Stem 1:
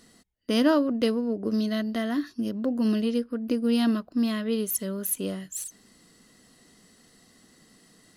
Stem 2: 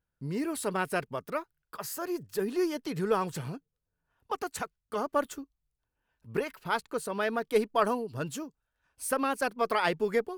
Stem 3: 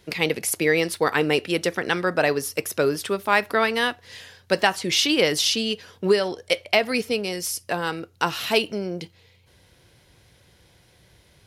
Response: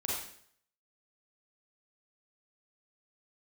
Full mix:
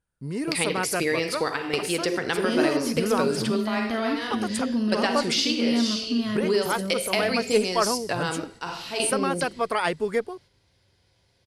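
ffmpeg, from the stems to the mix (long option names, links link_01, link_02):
-filter_complex "[0:a]asubboost=boost=2.5:cutoff=170,adelay=1950,volume=0.5dB,asplit=2[link_01][link_02];[link_02]volume=-14dB[link_03];[1:a]equalizer=frequency=9200:width=4.5:gain=14,volume=2.5dB,asplit=2[link_04][link_05];[2:a]equalizer=frequency=4700:width_type=o:width=0.32:gain=8,adelay=400,volume=0.5dB,asplit=2[link_06][link_07];[link_07]volume=-15.5dB[link_08];[link_05]apad=whole_len=523074[link_09];[link_06][link_09]sidechaingate=range=-19dB:threshold=-49dB:ratio=16:detection=peak[link_10];[link_01][link_10]amix=inputs=2:normalize=0,agate=range=-10dB:threshold=-48dB:ratio=16:detection=peak,acompressor=threshold=-26dB:ratio=4,volume=0dB[link_11];[3:a]atrim=start_sample=2205[link_12];[link_03][link_08]amix=inputs=2:normalize=0[link_13];[link_13][link_12]afir=irnorm=-1:irlink=0[link_14];[link_04][link_11][link_14]amix=inputs=3:normalize=0,lowpass=9400"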